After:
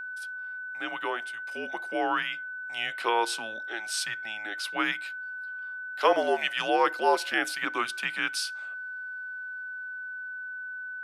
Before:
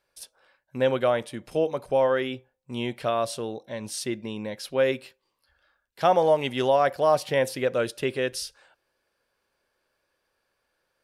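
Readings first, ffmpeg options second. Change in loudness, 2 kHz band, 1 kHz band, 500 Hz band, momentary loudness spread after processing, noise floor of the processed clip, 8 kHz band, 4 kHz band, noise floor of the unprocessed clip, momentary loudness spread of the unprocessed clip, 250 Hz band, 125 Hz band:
-4.5 dB, +8.0 dB, -0.5 dB, -8.0 dB, 12 LU, -38 dBFS, 0.0 dB, +2.5 dB, -77 dBFS, 13 LU, -5.5 dB, -20.5 dB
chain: -af "dynaudnorm=f=220:g=17:m=10dB,highpass=f=880:w=0.5412,highpass=f=880:w=1.3066,highshelf=f=5.9k:g=-7.5,afreqshift=-220,aeval=exprs='val(0)+0.0224*sin(2*PI*1500*n/s)':c=same,volume=-2dB"

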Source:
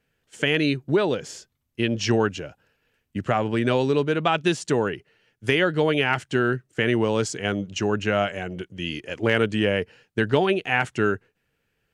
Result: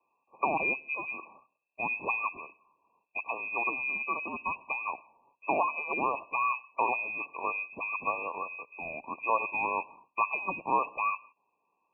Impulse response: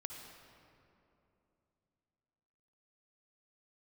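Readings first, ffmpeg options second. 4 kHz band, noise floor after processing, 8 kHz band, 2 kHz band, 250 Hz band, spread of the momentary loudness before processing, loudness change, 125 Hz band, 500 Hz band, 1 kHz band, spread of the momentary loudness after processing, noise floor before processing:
under -40 dB, -79 dBFS, under -40 dB, -5.5 dB, -20.5 dB, 11 LU, -8.0 dB, -28.0 dB, -16.0 dB, -1.0 dB, 10 LU, -74 dBFS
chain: -filter_complex "[0:a]asplit=2[a][b];[b]highpass=f=720:p=1,volume=12dB,asoftclip=type=tanh:threshold=-6.5dB[c];[a][c]amix=inputs=2:normalize=0,lowpass=f=1.1k:p=1,volume=-6dB,lowpass=f=2.3k:t=q:w=0.5098,lowpass=f=2.3k:t=q:w=0.6013,lowpass=f=2.3k:t=q:w=0.9,lowpass=f=2.3k:t=q:w=2.563,afreqshift=-2700,acrossover=split=160 2100:gain=0.2 1 0.2[d][e][f];[d][e][f]amix=inputs=3:normalize=0,asplit=2[g][h];[1:a]atrim=start_sample=2205,afade=t=out:st=0.23:d=0.01,atrim=end_sample=10584[i];[h][i]afir=irnorm=-1:irlink=0,volume=-12dB[j];[g][j]amix=inputs=2:normalize=0,afftfilt=real='re*eq(mod(floor(b*sr/1024/1200),2),0)':imag='im*eq(mod(floor(b*sr/1024/1200),2),0)':win_size=1024:overlap=0.75"

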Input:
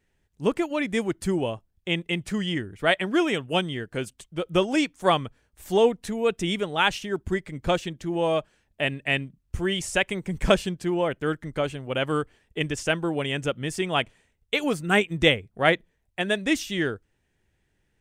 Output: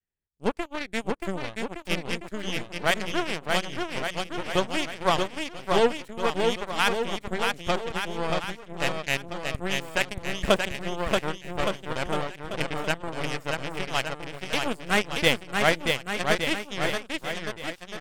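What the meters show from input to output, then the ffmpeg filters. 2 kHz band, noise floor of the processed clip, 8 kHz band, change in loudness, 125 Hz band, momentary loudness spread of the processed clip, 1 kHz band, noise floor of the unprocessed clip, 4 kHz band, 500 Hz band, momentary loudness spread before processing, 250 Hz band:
-0.5 dB, -49 dBFS, +1.0 dB, -2.0 dB, -4.0 dB, 9 LU, +0.5 dB, -72 dBFS, 0.0 dB, -2.5 dB, 8 LU, -5.5 dB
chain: -filter_complex "[0:a]adynamicequalizer=threshold=0.01:dfrequency=310:dqfactor=2.2:tfrequency=310:tqfactor=2.2:attack=5:release=100:ratio=0.375:range=3:mode=cutabove:tftype=bell,acontrast=62,equalizer=f=6k:w=5.9:g=-8.5,aeval=exprs='0.794*(cos(1*acos(clip(val(0)/0.794,-1,1)))-cos(1*PI/2))+0.1*(cos(3*acos(clip(val(0)/0.794,-1,1)))-cos(3*PI/2))+0.0631*(cos(7*acos(clip(val(0)/0.794,-1,1)))-cos(7*PI/2))+0.0447*(cos(8*acos(clip(val(0)/0.794,-1,1)))-cos(8*PI/2))':c=same,asplit=2[a][b];[b]aecho=0:1:630|1166|1621|2008|2336:0.631|0.398|0.251|0.158|0.1[c];[a][c]amix=inputs=2:normalize=0,volume=-5dB"

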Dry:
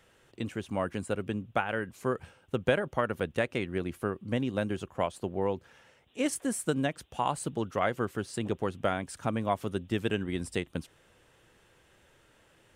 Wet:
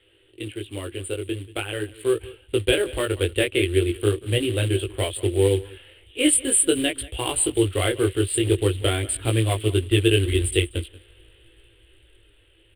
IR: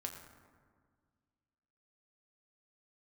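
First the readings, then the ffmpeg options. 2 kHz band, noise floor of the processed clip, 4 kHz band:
+7.0 dB, -58 dBFS, +16.0 dB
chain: -filter_complex "[0:a]acrossover=split=5100[a][b];[a]asubboost=boost=4.5:cutoff=85[c];[b]acrusher=bits=7:mix=0:aa=0.000001[d];[c][d]amix=inputs=2:normalize=0,dynaudnorm=f=250:g=17:m=8dB,aecho=1:1:185:0.0944,acontrast=54,flanger=delay=18:depth=3.1:speed=0.43,acrusher=bits=4:mode=log:mix=0:aa=0.000001,firequalizer=gain_entry='entry(110,0);entry(170,-26);entry(330,7);entry(640,-10);entry(900,-14);entry(3100,9);entry(6000,-26);entry(8700,12);entry(14000,-11)':delay=0.05:min_phase=1"

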